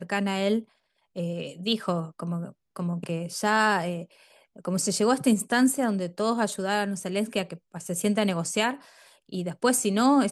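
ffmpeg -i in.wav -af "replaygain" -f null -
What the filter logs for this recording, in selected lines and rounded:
track_gain = +6.1 dB
track_peak = 0.248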